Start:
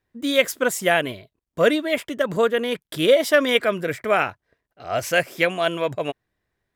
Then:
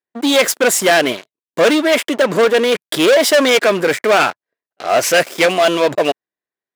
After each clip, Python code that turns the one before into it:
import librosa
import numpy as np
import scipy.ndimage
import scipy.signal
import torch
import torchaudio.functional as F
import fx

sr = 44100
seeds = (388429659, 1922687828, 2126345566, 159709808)

y = fx.leveller(x, sr, passes=5)
y = scipy.signal.sosfilt(scipy.signal.butter(2, 280.0, 'highpass', fs=sr, output='sos'), y)
y = fx.peak_eq(y, sr, hz=15000.0, db=-6.0, octaves=0.53)
y = y * librosa.db_to_amplitude(-3.5)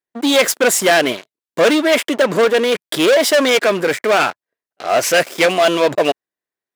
y = fx.rider(x, sr, range_db=3, speed_s=2.0)
y = y * librosa.db_to_amplitude(-1.0)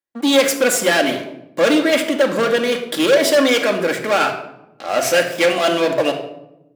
y = fx.room_shoebox(x, sr, seeds[0], volume_m3=2800.0, walls='furnished', distance_m=2.3)
y = y * librosa.db_to_amplitude(-4.0)